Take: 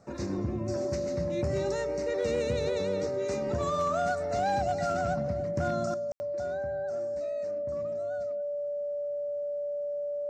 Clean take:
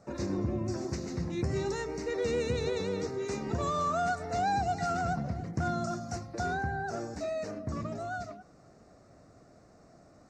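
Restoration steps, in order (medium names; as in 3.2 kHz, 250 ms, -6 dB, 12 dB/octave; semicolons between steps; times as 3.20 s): clip repair -21.5 dBFS; band-stop 580 Hz, Q 30; room tone fill 6.12–6.20 s; gain correction +10 dB, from 5.94 s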